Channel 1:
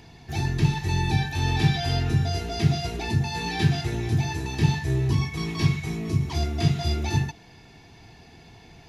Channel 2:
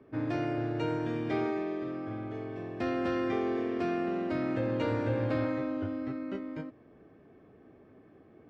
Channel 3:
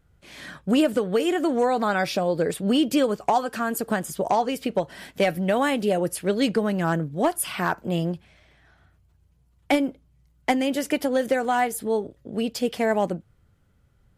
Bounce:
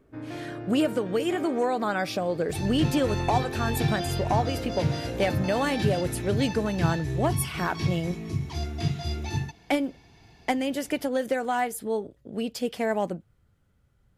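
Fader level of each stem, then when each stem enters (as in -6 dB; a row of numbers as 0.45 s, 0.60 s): -5.5 dB, -5.0 dB, -4.0 dB; 2.20 s, 0.00 s, 0.00 s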